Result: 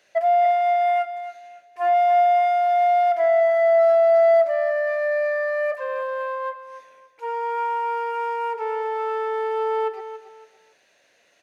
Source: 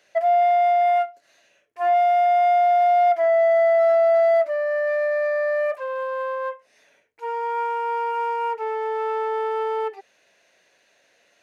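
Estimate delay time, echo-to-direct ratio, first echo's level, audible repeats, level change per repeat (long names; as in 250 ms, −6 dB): 281 ms, −11.5 dB, −12.0 dB, 3, −11.5 dB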